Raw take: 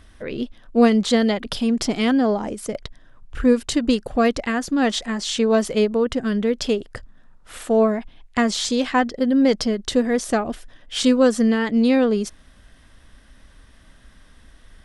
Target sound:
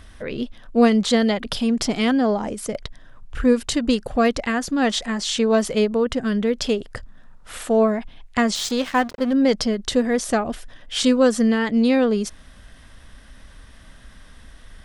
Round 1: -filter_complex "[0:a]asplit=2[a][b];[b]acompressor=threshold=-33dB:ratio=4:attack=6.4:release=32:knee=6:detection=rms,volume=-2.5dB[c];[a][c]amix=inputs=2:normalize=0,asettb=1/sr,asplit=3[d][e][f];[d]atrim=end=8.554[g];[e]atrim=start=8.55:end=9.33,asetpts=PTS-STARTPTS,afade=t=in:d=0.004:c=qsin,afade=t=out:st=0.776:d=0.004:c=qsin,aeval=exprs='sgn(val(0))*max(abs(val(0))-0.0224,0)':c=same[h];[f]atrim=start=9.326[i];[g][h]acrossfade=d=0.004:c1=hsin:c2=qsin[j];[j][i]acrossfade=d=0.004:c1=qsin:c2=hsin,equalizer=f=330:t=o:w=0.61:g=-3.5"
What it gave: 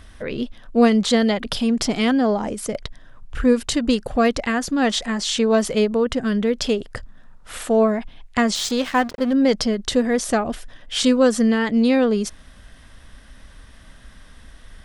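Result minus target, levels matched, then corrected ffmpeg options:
compressor: peak gain reduction -7 dB
-filter_complex "[0:a]asplit=2[a][b];[b]acompressor=threshold=-42dB:ratio=4:attack=6.4:release=32:knee=6:detection=rms,volume=-2.5dB[c];[a][c]amix=inputs=2:normalize=0,asettb=1/sr,asplit=3[d][e][f];[d]atrim=end=8.554[g];[e]atrim=start=8.55:end=9.33,asetpts=PTS-STARTPTS,afade=t=in:d=0.004:c=qsin,afade=t=out:st=0.776:d=0.004:c=qsin,aeval=exprs='sgn(val(0))*max(abs(val(0))-0.0224,0)':c=same[h];[f]atrim=start=9.326[i];[g][h]acrossfade=d=0.004:c1=hsin:c2=qsin[j];[j][i]acrossfade=d=0.004:c1=qsin:c2=hsin,equalizer=f=330:t=o:w=0.61:g=-3.5"

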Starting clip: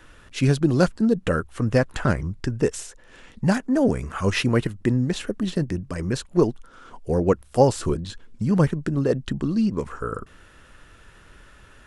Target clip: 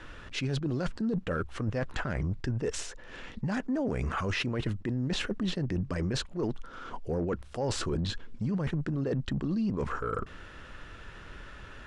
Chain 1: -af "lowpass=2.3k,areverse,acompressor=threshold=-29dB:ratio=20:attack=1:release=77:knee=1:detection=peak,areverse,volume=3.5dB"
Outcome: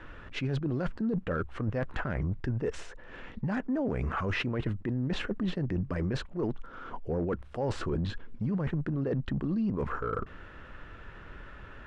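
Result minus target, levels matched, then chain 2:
4000 Hz band -5.5 dB
-af "lowpass=5.1k,areverse,acompressor=threshold=-29dB:ratio=20:attack=1:release=77:knee=1:detection=peak,areverse,volume=3.5dB"

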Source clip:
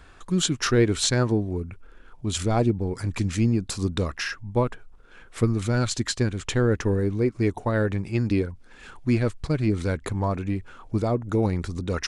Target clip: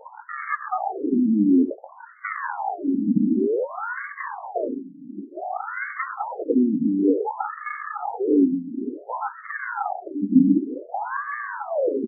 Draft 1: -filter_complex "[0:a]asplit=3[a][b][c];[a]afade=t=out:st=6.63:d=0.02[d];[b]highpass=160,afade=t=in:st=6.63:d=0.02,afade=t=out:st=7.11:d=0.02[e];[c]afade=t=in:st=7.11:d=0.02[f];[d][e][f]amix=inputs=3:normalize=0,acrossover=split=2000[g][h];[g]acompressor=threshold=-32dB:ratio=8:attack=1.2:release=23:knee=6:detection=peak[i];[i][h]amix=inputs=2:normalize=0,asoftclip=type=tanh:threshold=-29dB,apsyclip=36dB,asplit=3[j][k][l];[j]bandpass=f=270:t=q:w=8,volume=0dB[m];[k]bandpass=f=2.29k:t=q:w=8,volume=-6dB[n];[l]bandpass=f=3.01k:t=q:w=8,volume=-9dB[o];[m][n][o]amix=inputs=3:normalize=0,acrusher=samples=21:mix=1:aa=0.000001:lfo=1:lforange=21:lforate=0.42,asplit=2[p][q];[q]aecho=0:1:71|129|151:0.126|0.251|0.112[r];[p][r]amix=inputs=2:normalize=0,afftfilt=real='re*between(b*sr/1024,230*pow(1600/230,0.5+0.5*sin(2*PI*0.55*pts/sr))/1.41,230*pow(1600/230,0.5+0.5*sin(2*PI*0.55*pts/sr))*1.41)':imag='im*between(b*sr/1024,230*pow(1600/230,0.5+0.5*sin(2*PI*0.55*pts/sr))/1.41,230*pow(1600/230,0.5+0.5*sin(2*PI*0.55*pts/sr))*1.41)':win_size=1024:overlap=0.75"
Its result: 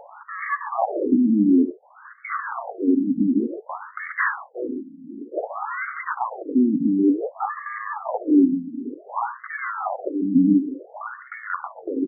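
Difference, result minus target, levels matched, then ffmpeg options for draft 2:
decimation with a swept rate: distortion -11 dB; soft clip: distortion +7 dB
-filter_complex "[0:a]asplit=3[a][b][c];[a]afade=t=out:st=6.63:d=0.02[d];[b]highpass=160,afade=t=in:st=6.63:d=0.02,afade=t=out:st=7.11:d=0.02[e];[c]afade=t=in:st=7.11:d=0.02[f];[d][e][f]amix=inputs=3:normalize=0,acrossover=split=2000[g][h];[g]acompressor=threshold=-32dB:ratio=8:attack=1.2:release=23:knee=6:detection=peak[i];[i][h]amix=inputs=2:normalize=0,asoftclip=type=tanh:threshold=-20.5dB,apsyclip=36dB,asplit=3[j][k][l];[j]bandpass=f=270:t=q:w=8,volume=0dB[m];[k]bandpass=f=2.29k:t=q:w=8,volume=-6dB[n];[l]bandpass=f=3.01k:t=q:w=8,volume=-9dB[o];[m][n][o]amix=inputs=3:normalize=0,acrusher=samples=61:mix=1:aa=0.000001:lfo=1:lforange=61:lforate=0.42,asplit=2[p][q];[q]aecho=0:1:71|129|151:0.126|0.251|0.112[r];[p][r]amix=inputs=2:normalize=0,afftfilt=real='re*between(b*sr/1024,230*pow(1600/230,0.5+0.5*sin(2*PI*0.55*pts/sr))/1.41,230*pow(1600/230,0.5+0.5*sin(2*PI*0.55*pts/sr))*1.41)':imag='im*between(b*sr/1024,230*pow(1600/230,0.5+0.5*sin(2*PI*0.55*pts/sr))/1.41,230*pow(1600/230,0.5+0.5*sin(2*PI*0.55*pts/sr))*1.41)':win_size=1024:overlap=0.75"

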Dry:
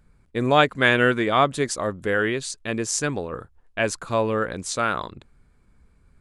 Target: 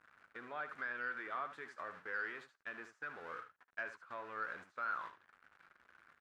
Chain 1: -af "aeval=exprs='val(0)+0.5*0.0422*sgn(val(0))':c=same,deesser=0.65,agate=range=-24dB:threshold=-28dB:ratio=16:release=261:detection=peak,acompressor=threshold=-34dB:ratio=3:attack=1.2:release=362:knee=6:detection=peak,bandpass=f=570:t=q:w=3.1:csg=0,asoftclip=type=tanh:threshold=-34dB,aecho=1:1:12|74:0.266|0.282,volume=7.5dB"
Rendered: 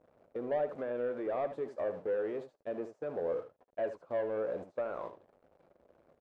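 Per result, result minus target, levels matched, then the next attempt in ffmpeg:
2000 Hz band -16.5 dB; compressor: peak gain reduction -5 dB
-af "aeval=exprs='val(0)+0.5*0.0422*sgn(val(0))':c=same,deesser=0.65,agate=range=-24dB:threshold=-28dB:ratio=16:release=261:detection=peak,acompressor=threshold=-34dB:ratio=3:attack=1.2:release=362:knee=6:detection=peak,bandpass=f=1.5k:t=q:w=3.1:csg=0,asoftclip=type=tanh:threshold=-34dB,aecho=1:1:12|74:0.266|0.282,volume=7.5dB"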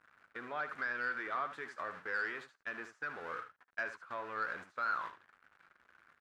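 compressor: peak gain reduction -5 dB
-af "aeval=exprs='val(0)+0.5*0.0422*sgn(val(0))':c=same,deesser=0.65,agate=range=-24dB:threshold=-28dB:ratio=16:release=261:detection=peak,acompressor=threshold=-41.5dB:ratio=3:attack=1.2:release=362:knee=6:detection=peak,bandpass=f=1.5k:t=q:w=3.1:csg=0,asoftclip=type=tanh:threshold=-34dB,aecho=1:1:12|74:0.266|0.282,volume=7.5dB"

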